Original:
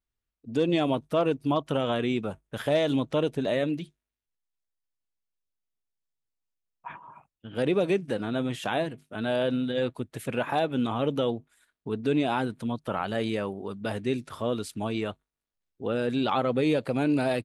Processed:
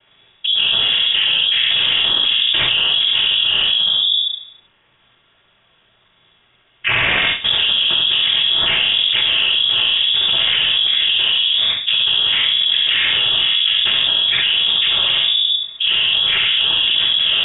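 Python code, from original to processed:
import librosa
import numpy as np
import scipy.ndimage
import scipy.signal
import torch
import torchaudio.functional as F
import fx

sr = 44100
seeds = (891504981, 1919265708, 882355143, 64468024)

p1 = fx.self_delay(x, sr, depth_ms=0.75, at=(6.9, 7.53))
p2 = fx.low_shelf(p1, sr, hz=150.0, db=10.5, at=(10.28, 11.11))
p3 = fx.rider(p2, sr, range_db=10, speed_s=0.5)
p4 = fx.noise_vocoder(p3, sr, seeds[0], bands=6)
p5 = p4 + fx.echo_feedback(p4, sr, ms=69, feedback_pct=18, wet_db=-4, dry=0)
p6 = fx.room_shoebox(p5, sr, seeds[1], volume_m3=290.0, walls='furnished', distance_m=1.9)
p7 = fx.freq_invert(p6, sr, carrier_hz=3600)
y = fx.env_flatten(p7, sr, amount_pct=100)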